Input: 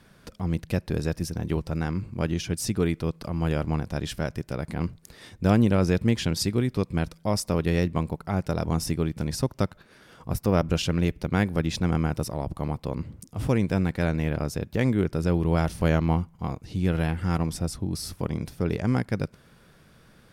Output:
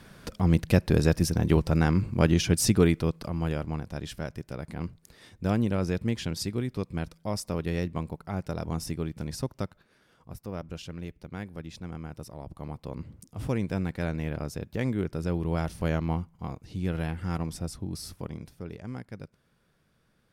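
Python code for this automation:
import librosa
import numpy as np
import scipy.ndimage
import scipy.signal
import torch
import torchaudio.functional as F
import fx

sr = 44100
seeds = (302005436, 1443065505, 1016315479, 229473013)

y = fx.gain(x, sr, db=fx.line((2.7, 5.0), (3.69, -6.0), (9.46, -6.0), (10.37, -14.5), (12.0, -14.5), (13.1, -5.5), (18.06, -5.5), (18.72, -14.0)))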